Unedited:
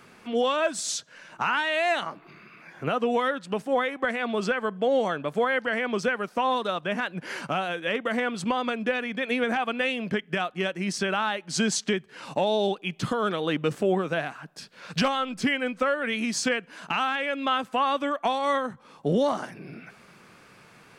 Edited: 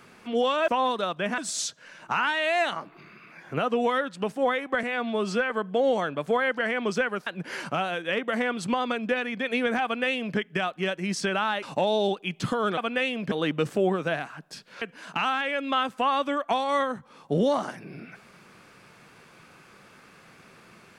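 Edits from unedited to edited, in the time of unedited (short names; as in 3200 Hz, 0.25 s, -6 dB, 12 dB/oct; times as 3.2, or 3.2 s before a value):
4.13–4.58 stretch 1.5×
6.34–7.04 move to 0.68
9.61–10.15 copy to 13.37
11.4–12.22 cut
14.87–16.56 cut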